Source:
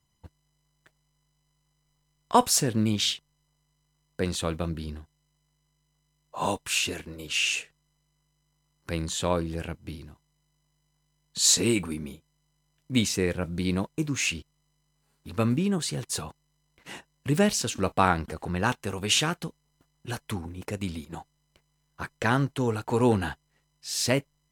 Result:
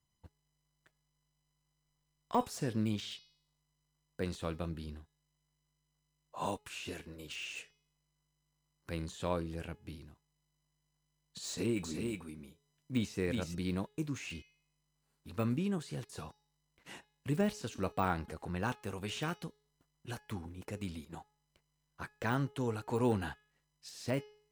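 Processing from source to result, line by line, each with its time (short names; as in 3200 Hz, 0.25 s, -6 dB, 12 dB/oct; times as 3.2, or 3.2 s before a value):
11.47–13.55 echo 0.372 s -5.5 dB
whole clip: de-hum 421.4 Hz, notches 14; de-esser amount 85%; gain -8.5 dB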